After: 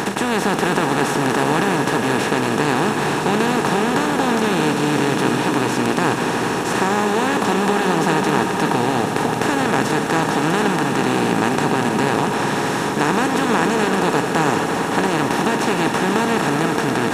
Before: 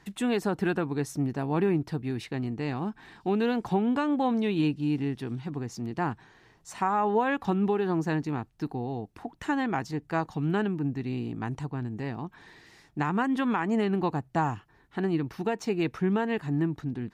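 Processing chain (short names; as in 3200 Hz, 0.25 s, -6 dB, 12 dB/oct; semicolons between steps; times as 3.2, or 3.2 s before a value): per-bin compression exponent 0.2; high shelf 2500 Hz +7.5 dB; swelling echo 81 ms, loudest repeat 5, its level -13 dB; gain -1 dB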